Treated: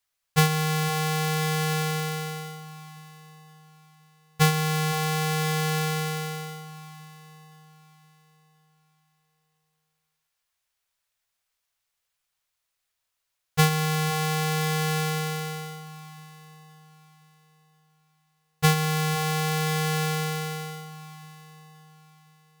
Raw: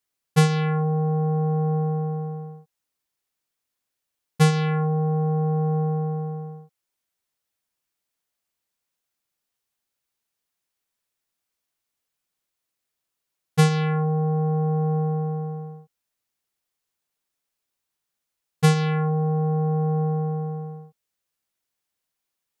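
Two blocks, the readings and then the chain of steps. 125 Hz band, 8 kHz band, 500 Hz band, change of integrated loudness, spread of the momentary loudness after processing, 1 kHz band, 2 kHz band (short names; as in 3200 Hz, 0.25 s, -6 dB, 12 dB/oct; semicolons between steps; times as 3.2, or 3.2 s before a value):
-4.5 dB, +9.0 dB, -4.0 dB, -2.5 dB, 20 LU, +1.0 dB, +6.5 dB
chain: half-waves squared off; bell 270 Hz -14 dB 1.7 oct; echo with dull and thin repeats by turns 0.518 s, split 990 Hz, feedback 50%, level -13 dB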